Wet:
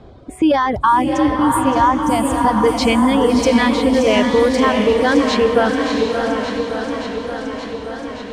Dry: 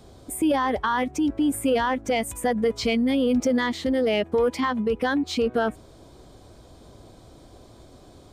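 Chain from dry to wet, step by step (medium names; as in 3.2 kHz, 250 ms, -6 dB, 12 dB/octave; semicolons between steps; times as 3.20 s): reverb removal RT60 0.97 s; level-controlled noise filter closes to 2.3 kHz, open at -20 dBFS; 0.73–2.63 s: graphic EQ 125/500/1000/2000/4000 Hz +10/-11/+10/-10/-5 dB; echo that smears into a reverb 683 ms, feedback 43%, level -4.5 dB; modulated delay 574 ms, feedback 77%, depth 101 cents, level -10 dB; trim +8 dB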